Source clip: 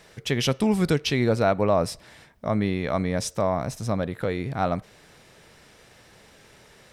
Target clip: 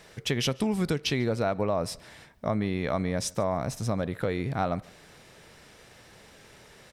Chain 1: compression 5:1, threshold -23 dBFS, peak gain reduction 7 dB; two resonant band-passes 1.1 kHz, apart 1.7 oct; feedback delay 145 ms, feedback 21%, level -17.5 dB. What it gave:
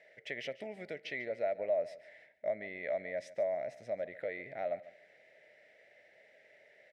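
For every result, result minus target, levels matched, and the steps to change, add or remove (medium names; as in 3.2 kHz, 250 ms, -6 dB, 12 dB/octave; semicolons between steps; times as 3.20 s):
echo-to-direct +8.5 dB; 1 kHz band -3.0 dB
change: feedback delay 145 ms, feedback 21%, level -26 dB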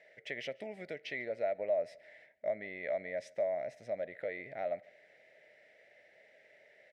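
1 kHz band -3.0 dB
remove: two resonant band-passes 1.1 kHz, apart 1.7 oct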